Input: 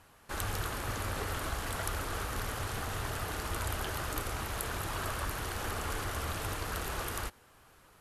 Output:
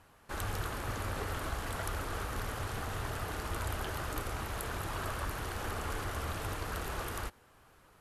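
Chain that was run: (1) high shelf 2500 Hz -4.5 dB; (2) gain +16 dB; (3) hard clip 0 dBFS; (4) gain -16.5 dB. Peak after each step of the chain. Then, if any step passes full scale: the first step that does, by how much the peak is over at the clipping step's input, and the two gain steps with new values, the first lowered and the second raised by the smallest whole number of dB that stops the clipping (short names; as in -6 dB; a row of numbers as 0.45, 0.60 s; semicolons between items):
-19.5, -3.5, -3.5, -20.0 dBFS; no overload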